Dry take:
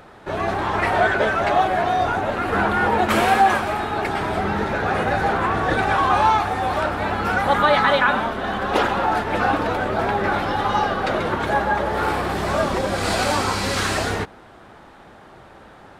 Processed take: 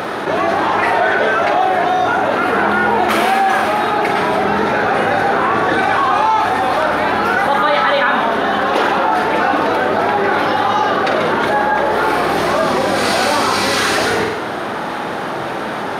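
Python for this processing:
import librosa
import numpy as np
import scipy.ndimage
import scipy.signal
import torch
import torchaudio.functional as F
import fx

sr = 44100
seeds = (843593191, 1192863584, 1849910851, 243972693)

y = scipy.signal.sosfilt(scipy.signal.butter(2, 180.0, 'highpass', fs=sr, output='sos'), x)
y = fx.notch(y, sr, hz=7600.0, q=5.3)
y = fx.room_flutter(y, sr, wall_m=8.2, rt60_s=0.39)
y = fx.env_flatten(y, sr, amount_pct=70)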